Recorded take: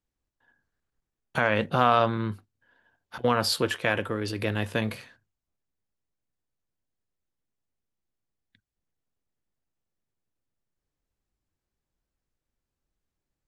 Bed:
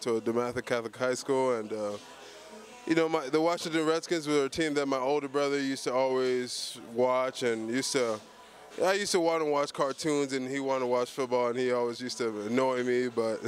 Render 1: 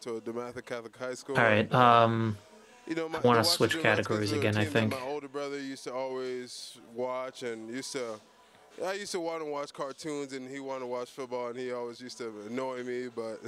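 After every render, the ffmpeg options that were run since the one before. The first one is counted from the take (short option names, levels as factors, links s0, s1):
-filter_complex "[1:a]volume=0.422[s0];[0:a][s0]amix=inputs=2:normalize=0"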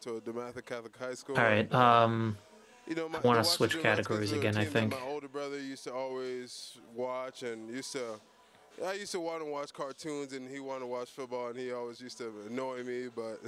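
-af "volume=0.75"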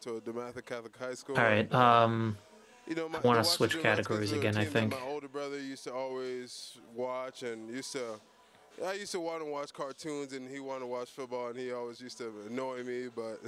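-af anull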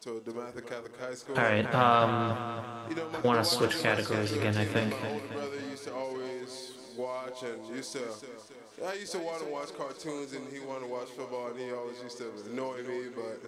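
-filter_complex "[0:a]asplit=2[s0][s1];[s1]adelay=38,volume=0.251[s2];[s0][s2]amix=inputs=2:normalize=0,asplit=2[s3][s4];[s4]aecho=0:1:276|552|828|1104|1380|1656:0.335|0.181|0.0977|0.0527|0.0285|0.0154[s5];[s3][s5]amix=inputs=2:normalize=0"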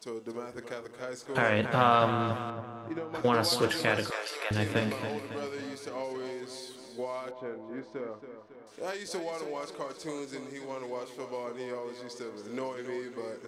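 -filter_complex "[0:a]asettb=1/sr,asplit=3[s0][s1][s2];[s0]atrim=end=2.504[s3];[s1]atrim=start=2.5:end=3.15,asetpts=PTS-STARTPTS,afade=t=in:d=0.004:c=qsin,afade=t=out:st=0.646:d=0.004:c=qsin,lowpass=f=1100:p=1[s4];[s2]atrim=start=3.146[s5];[s3][s4]acrossfade=d=0.004:c1=hsin:c2=qsin[s6];[s6][s5]acrossfade=d=0.004:c1=qsin:c2=hsin,asettb=1/sr,asplit=3[s7][s8][s9];[s7]atrim=end=4.104[s10];[s8]atrim=start=4.1:end=4.51,asetpts=PTS-STARTPTS,afade=t=in:d=0.004:c=qsin,afade=t=out:st=0.406:d=0.004:c=qsin,highpass=f=580:w=0.5412,highpass=f=580:w=1.3066[s11];[s9]atrim=start=4.506[s12];[s10][s11]acrossfade=d=0.004:c1=hsin:c2=qsin[s13];[s13][s12]acrossfade=d=0.004:c1=qsin:c2=hsin,asettb=1/sr,asplit=3[s14][s15][s16];[s14]atrim=end=7.314[s17];[s15]atrim=start=7.31:end=8.67,asetpts=PTS-STARTPTS,afade=t=in:d=0.004:c=qsin,afade=t=out:st=1.356:d=0.004:c=qsin,lowpass=1500[s18];[s16]atrim=start=8.666[s19];[s17][s18]acrossfade=d=0.004:c1=hsin:c2=qsin[s20];[s20][s19]acrossfade=d=0.004:c1=qsin:c2=hsin"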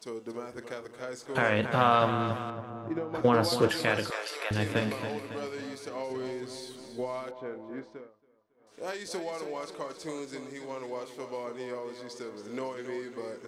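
-filter_complex "[0:a]asettb=1/sr,asplit=3[s0][s1][s2];[s0]atrim=end=2.704[s3];[s1]atrim=start=2.7:end=3.69,asetpts=PTS-STARTPTS,afade=t=in:d=0.004:c=qsin,afade=t=out:st=0.986:d=0.004:c=qsin,tiltshelf=f=1300:g=4[s4];[s2]atrim=start=3.686[s5];[s3][s4]acrossfade=d=0.004:c1=hsin:c2=qsin[s6];[s6][s5]acrossfade=d=0.004:c1=qsin:c2=hsin,asettb=1/sr,asplit=3[s7][s8][s9];[s7]atrim=end=6.104[s10];[s8]atrim=start=6.1:end=7.24,asetpts=PTS-STARTPTS,afade=t=in:d=0.004:c=qsin,afade=t=out:st=1.136:d=0.004:c=qsin,lowshelf=f=200:g=10[s11];[s9]atrim=start=7.236[s12];[s10][s11]acrossfade=d=0.004:c1=hsin:c2=qsin[s13];[s13][s12]acrossfade=d=0.004:c1=qsin:c2=hsin,asplit=3[s14][s15][s16];[s14]atrim=end=8.11,asetpts=PTS-STARTPTS,afade=t=out:st=7.78:d=0.33:silence=0.0944061[s17];[s15]atrim=start=8.11:end=8.56,asetpts=PTS-STARTPTS,volume=0.0944[s18];[s16]atrim=start=8.56,asetpts=PTS-STARTPTS,afade=t=in:d=0.33:silence=0.0944061[s19];[s17][s18][s19]concat=n=3:v=0:a=1"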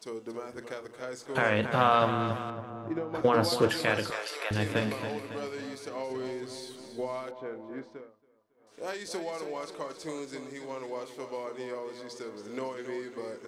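-af "bandreject=f=60:t=h:w=6,bandreject=f=120:t=h:w=6,bandreject=f=180:t=h:w=6,bandreject=f=240:t=h:w=6"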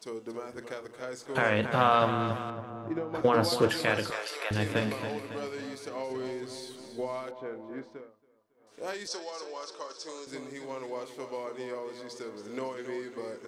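-filter_complex "[0:a]asettb=1/sr,asplit=3[s0][s1][s2];[s0]atrim=end=9.074[s3];[s1]atrim=start=9.07:end=10.27,asetpts=PTS-STARTPTS,afade=t=in:d=0.004:c=qsin,afade=t=out:st=1.196:d=0.004:c=qsin,highpass=500,equalizer=f=700:t=q:w=4:g=-6,equalizer=f=2100:t=q:w=4:g=-9,equalizer=f=5400:t=q:w=4:g=10,lowpass=f=8200:w=0.5412,lowpass=f=8200:w=1.3066[s4];[s2]atrim=start=10.266[s5];[s3][s4]acrossfade=d=0.004:c1=hsin:c2=qsin[s6];[s6][s5]acrossfade=d=0.004:c1=qsin:c2=hsin"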